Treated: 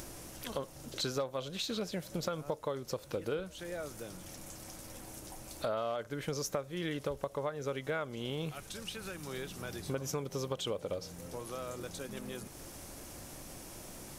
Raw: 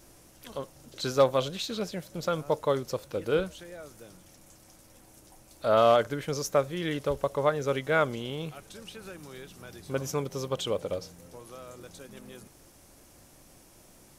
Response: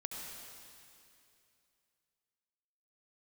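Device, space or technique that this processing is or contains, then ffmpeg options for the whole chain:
upward and downward compression: -filter_complex "[0:a]acompressor=mode=upward:threshold=-45dB:ratio=2.5,acompressor=threshold=-37dB:ratio=8,asettb=1/sr,asplit=3[a][b][c];[a]atrim=end=8.524[d];[b]atrim=start=8.52:end=9.27,asetpts=PTS-STARTPTS,afade=t=in:d=0.004:c=qsin,afade=t=out:st=0.746:d=0.004:c=qsin,equalizer=f=430:w=0.46:g=-5[e];[c]atrim=start=9.266[f];[d][e]acrossfade=d=0.004:c1=hsin:c2=qsin[g];[g][f]acrossfade=d=0.004:c1=qsin:c2=hsin,volume=4dB"

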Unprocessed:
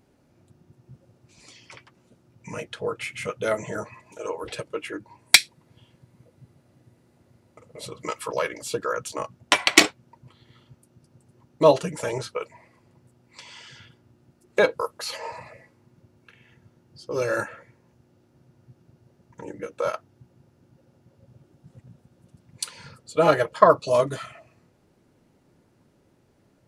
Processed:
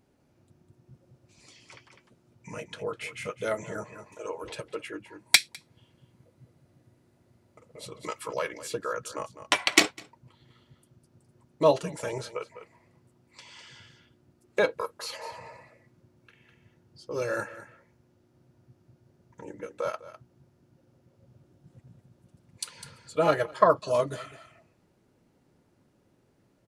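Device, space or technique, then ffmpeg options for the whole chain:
ducked delay: -filter_complex "[0:a]asplit=3[a][b][c];[b]adelay=203,volume=-7dB[d];[c]apad=whole_len=1185259[e];[d][e]sidechaincompress=threshold=-37dB:ratio=20:attack=34:release=349[f];[a][f]amix=inputs=2:normalize=0,volume=-5dB"

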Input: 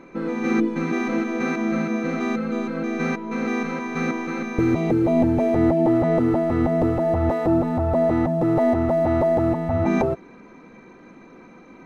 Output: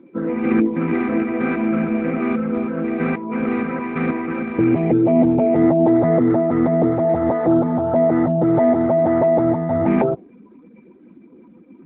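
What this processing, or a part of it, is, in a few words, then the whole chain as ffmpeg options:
mobile call with aggressive noise cancelling: -filter_complex "[0:a]asplit=3[a][b][c];[a]afade=t=out:st=1.01:d=0.02[d];[b]highpass=100,afade=t=in:st=1.01:d=0.02,afade=t=out:st=2.22:d=0.02[e];[c]afade=t=in:st=2.22:d=0.02[f];[d][e][f]amix=inputs=3:normalize=0,highpass=f=110:w=0.5412,highpass=f=110:w=1.3066,afftdn=nr=17:nf=-37,volume=4dB" -ar 8000 -c:a libopencore_amrnb -b:a 12200

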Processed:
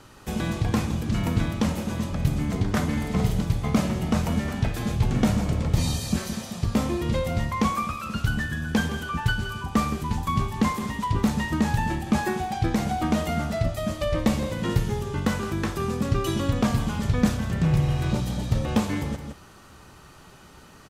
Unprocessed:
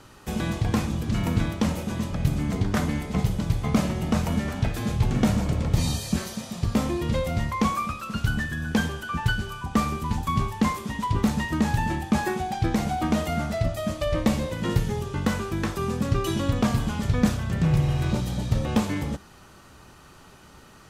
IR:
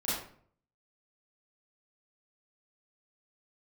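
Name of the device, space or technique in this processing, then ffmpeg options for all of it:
ducked delay: -filter_complex "[0:a]asettb=1/sr,asplit=3[a][b][c];[a]atrim=end=2.924[d];[b]atrim=start=2.92:end=3.42,asetpts=PTS-STARTPTS,afade=t=in:d=0.004:c=qsin,afade=t=out:st=0.496:d=0.004:c=qsin,asplit=2[e][f];[f]adelay=50,volume=-2.5dB[g];[e][g]amix=inputs=2:normalize=0,atrim=end_sample=22050[h];[c]atrim=start=3.416[i];[d][h]acrossfade=d=0.004:c1=hsin:c2=qsin[j];[j][i]acrossfade=d=0.004:c1=qsin:c2=hsin,asplit=3[k][l][m];[l]adelay=166,volume=-7dB[n];[m]apad=whole_len=928590[o];[n][o]sidechaincompress=threshold=-33dB:ratio=8:attack=45:release=157[p];[k][p]amix=inputs=2:normalize=0"

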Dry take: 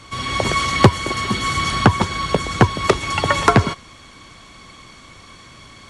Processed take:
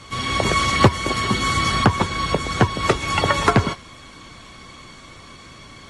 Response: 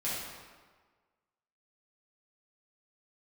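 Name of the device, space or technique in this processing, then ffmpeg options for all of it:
low-bitrate web radio: -af "dynaudnorm=f=210:g=13:m=4.5dB,alimiter=limit=-5dB:level=0:latency=1:release=235" -ar 32000 -c:a aac -b:a 32k

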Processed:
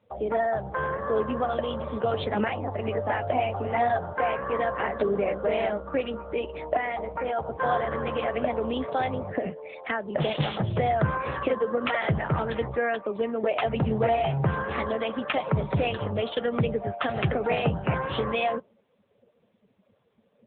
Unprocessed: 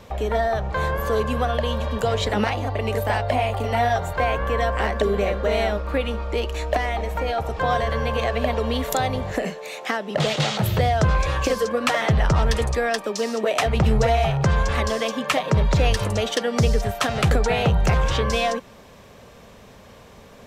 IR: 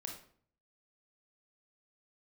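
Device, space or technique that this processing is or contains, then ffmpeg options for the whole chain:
mobile call with aggressive noise cancelling: -af "highpass=f=100:p=1,afftdn=nr=21:nf=-33,volume=-2.5dB" -ar 8000 -c:a libopencore_amrnb -b:a 7950

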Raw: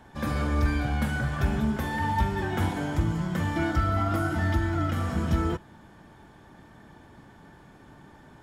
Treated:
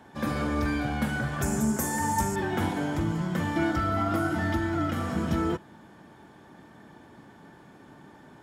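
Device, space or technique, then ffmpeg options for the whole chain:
filter by subtraction: -filter_complex "[0:a]asettb=1/sr,asplit=3[a][b][c];[a]atrim=end=1.424[d];[b]atrim=start=1.42:end=2.36,asetpts=PTS-STARTPTS,afade=t=in:d=0.004:c=qsin,afade=t=out:st=0.936:d=0.004:c=qsin,highshelf=f=5.1k:t=q:w=3:g=13[e];[c]atrim=start=2.356[f];[d][e]acrossfade=d=0.004:c1=hsin:c2=qsin[g];[g][f]acrossfade=d=0.004:c1=qsin:c2=hsin,asplit=2[h][i];[i]lowpass=250,volume=-1[j];[h][j]amix=inputs=2:normalize=0"

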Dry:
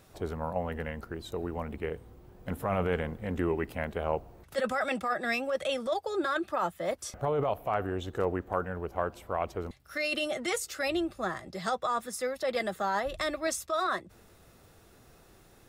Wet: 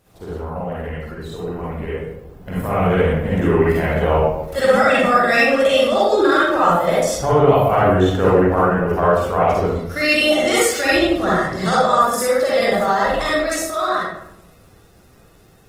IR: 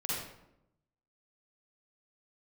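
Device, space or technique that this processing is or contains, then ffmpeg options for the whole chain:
speakerphone in a meeting room: -filter_complex "[1:a]atrim=start_sample=2205[a];[0:a][a]afir=irnorm=-1:irlink=0,dynaudnorm=f=450:g=13:m=11dB,volume=2dB" -ar 48000 -c:a libopus -b:a 20k

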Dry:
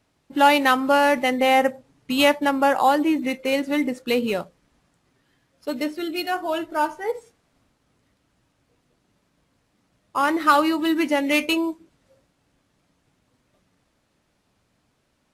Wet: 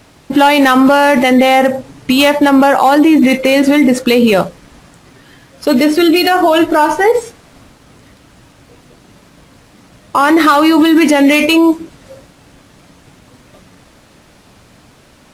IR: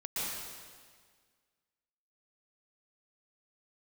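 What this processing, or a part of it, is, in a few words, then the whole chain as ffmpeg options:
loud club master: -af "acompressor=threshold=-20dB:ratio=2,asoftclip=type=hard:threshold=-14dB,alimiter=level_in=25dB:limit=-1dB:release=50:level=0:latency=1,volume=-1dB"

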